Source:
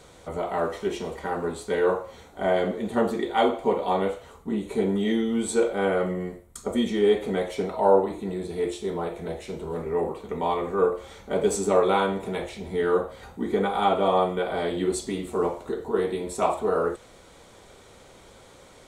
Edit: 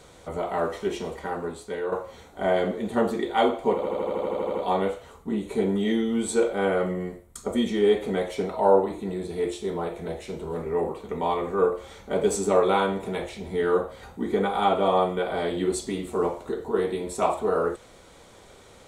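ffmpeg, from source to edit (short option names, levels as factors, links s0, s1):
-filter_complex "[0:a]asplit=12[s0][s1][s2][s3][s4][s5][s6][s7][s8][s9][s10][s11];[s0]atrim=end=1.92,asetpts=PTS-STARTPTS,afade=t=out:st=1.07:d=0.85:silence=0.354813[s12];[s1]atrim=start=1.92:end=3.832,asetpts=PTS-STARTPTS,afade=t=in:d=0.004:c=hsin:silence=0.354813[s13];[s2]atrim=start=3.748:end=3.832[s14];[s3]atrim=start=3.748:end=3.832[s15];[s4]atrim=start=3.748:end=3.832[s16];[s5]atrim=start=3.748:end=3.832[s17];[s6]atrim=start=3.748:end=3.832[s18];[s7]atrim=start=3.748:end=3.832[s19];[s8]atrim=start=3.748:end=3.832[s20];[s9]atrim=start=3.748:end=3.832[s21];[s10]atrim=start=3.748:end=3.832[s22];[s11]atrim=start=3.748[s23];[s12][s13]concat=n=2:v=0:a=1[s24];[s24][s14]acrossfade=d=0.004:c1=hsin:c2=hsin[s25];[s25][s15]acrossfade=d=0.004:c1=hsin:c2=hsin[s26];[s26][s16]acrossfade=d=0.004:c1=hsin:c2=hsin[s27];[s27][s17]acrossfade=d=0.004:c1=hsin:c2=hsin[s28];[s28][s18]acrossfade=d=0.004:c1=hsin:c2=hsin[s29];[s29][s19]acrossfade=d=0.004:c1=hsin:c2=hsin[s30];[s30][s20]acrossfade=d=0.004:c1=hsin:c2=hsin[s31];[s31][s21]acrossfade=d=0.004:c1=hsin:c2=hsin[s32];[s32][s22]acrossfade=d=0.004:c1=hsin:c2=hsin[s33];[s33][s23]acrossfade=d=0.004:c1=hsin:c2=hsin"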